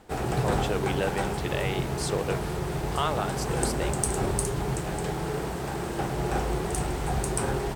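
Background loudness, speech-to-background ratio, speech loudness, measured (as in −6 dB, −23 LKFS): −29.5 LKFS, −3.5 dB, −33.0 LKFS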